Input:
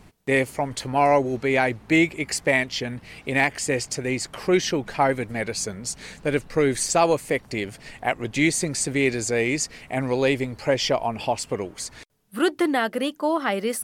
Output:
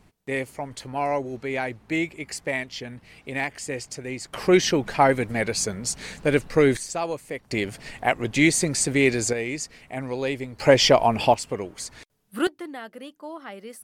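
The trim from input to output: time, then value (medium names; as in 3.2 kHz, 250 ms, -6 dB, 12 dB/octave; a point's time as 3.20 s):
-7 dB
from 4.33 s +2.5 dB
from 6.77 s -9 dB
from 7.51 s +2 dB
from 9.33 s -6 dB
from 10.60 s +6 dB
from 11.34 s -2 dB
from 12.47 s -14.5 dB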